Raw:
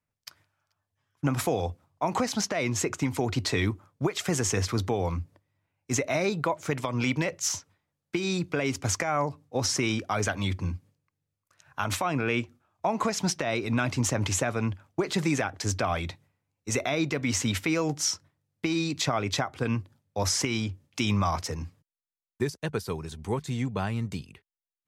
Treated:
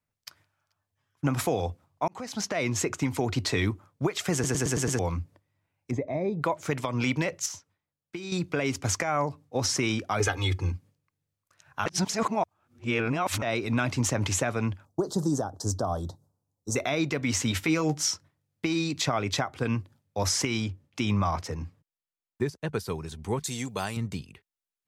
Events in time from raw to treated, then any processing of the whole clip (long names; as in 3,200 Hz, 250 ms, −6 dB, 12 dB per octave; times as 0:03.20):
0:02.08–0:02.56: fade in
0:04.33: stutter in place 0.11 s, 6 plays
0:05.91–0:06.42: moving average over 31 samples
0:07.46–0:08.32: clip gain −8.5 dB
0:10.20–0:10.72: comb filter 2.4 ms, depth 90%
0:11.86–0:13.42: reverse
0:14.85–0:16.76: Butterworth band-reject 2,300 Hz, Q 0.54
0:17.50–0:18.07: double-tracking delay 13 ms −8 dB
0:20.72–0:22.69: high-shelf EQ 3,200 Hz −7.5 dB
0:23.43–0:23.97: bass and treble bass −8 dB, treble +14 dB